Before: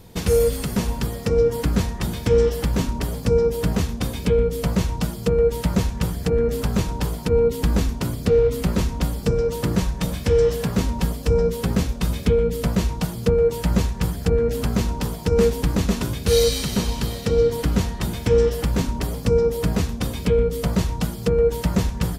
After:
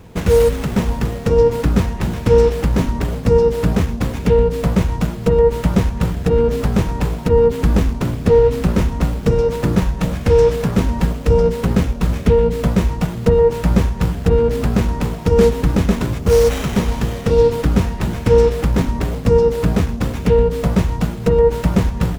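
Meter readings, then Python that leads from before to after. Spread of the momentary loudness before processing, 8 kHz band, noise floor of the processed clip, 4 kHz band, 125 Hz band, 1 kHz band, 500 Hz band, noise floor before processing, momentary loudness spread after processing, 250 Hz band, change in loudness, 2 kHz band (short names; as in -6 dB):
7 LU, -2.0 dB, -27 dBFS, -1.0 dB, +5.5 dB, +7.0 dB, +5.5 dB, -32 dBFS, 7 LU, +5.5 dB, +5.0 dB, +4.5 dB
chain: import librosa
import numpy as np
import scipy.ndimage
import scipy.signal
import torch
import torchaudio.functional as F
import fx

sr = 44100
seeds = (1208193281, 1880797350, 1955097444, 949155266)

y = fx.spec_erase(x, sr, start_s=16.19, length_s=0.31, low_hz=1400.0, high_hz=4800.0)
y = fx.running_max(y, sr, window=9)
y = y * librosa.db_to_amplitude(5.5)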